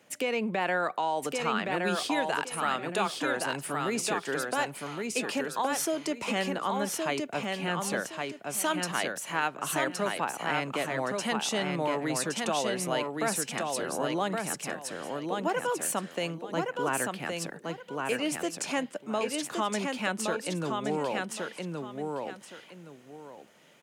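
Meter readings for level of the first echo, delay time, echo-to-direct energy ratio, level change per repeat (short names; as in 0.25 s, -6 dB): -3.5 dB, 1.118 s, -3.0 dB, -12.0 dB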